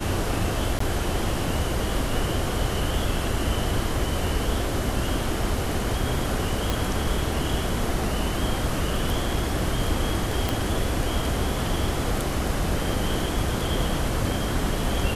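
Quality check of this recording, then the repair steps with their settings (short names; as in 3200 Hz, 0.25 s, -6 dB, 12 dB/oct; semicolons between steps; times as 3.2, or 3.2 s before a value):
0.79–0.8 gap 14 ms
6.7 pop
10.49 pop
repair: de-click; interpolate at 0.79, 14 ms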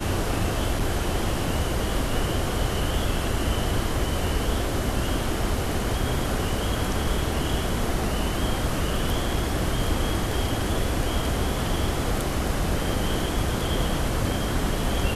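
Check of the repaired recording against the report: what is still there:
6.7 pop
10.49 pop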